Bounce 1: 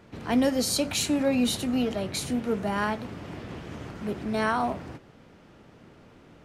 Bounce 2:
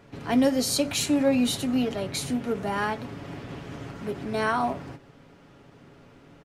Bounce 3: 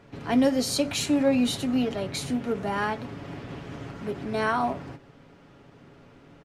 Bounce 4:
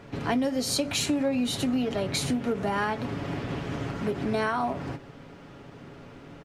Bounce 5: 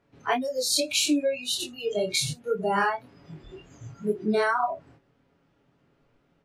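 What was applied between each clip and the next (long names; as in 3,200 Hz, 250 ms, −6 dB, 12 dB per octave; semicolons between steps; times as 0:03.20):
comb filter 7.2 ms, depth 40%; every ending faded ahead of time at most 240 dB per second
high-shelf EQ 8,900 Hz −7.5 dB
downward compressor 6 to 1, threshold −30 dBFS, peak gain reduction 12.5 dB; level +6 dB
noise reduction from a noise print of the clip's start 25 dB; chorus effect 1.9 Hz, depth 3.7 ms; level +7.5 dB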